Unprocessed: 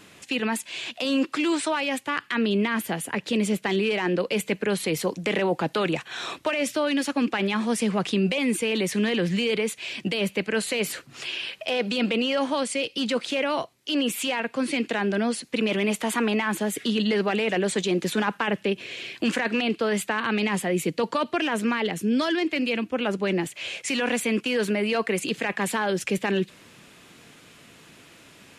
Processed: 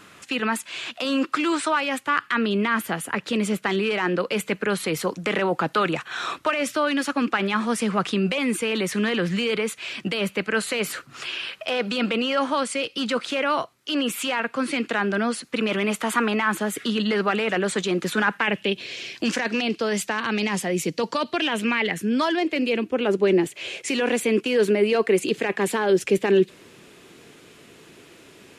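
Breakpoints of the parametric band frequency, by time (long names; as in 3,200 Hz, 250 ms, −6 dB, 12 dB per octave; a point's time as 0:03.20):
parametric band +9.5 dB 0.63 octaves
0:18.16 1,300 Hz
0:18.99 5,600 Hz
0:21.11 5,600 Hz
0:22.05 1,600 Hz
0:22.61 390 Hz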